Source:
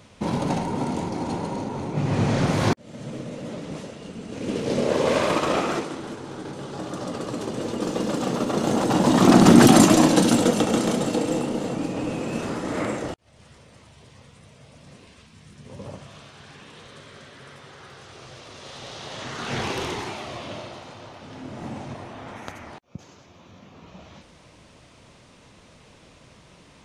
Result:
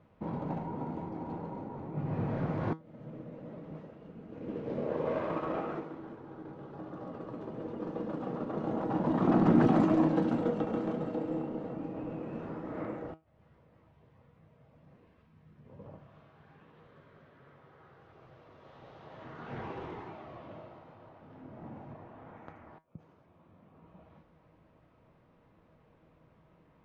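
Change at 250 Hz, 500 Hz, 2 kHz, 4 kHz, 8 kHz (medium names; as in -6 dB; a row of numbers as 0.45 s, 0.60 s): -11.0 dB, -11.0 dB, -17.0 dB, under -25 dB, under -35 dB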